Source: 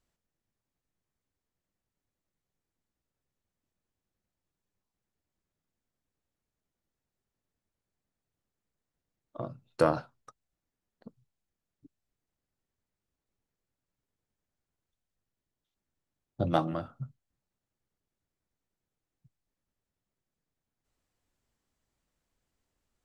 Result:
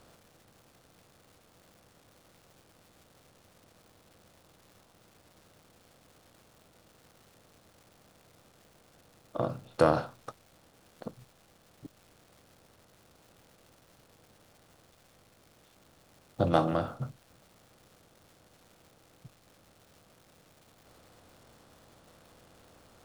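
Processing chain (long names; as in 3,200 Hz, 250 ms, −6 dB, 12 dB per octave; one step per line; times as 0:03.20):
compressor on every frequency bin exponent 0.6
surface crackle 490 per second −50 dBFS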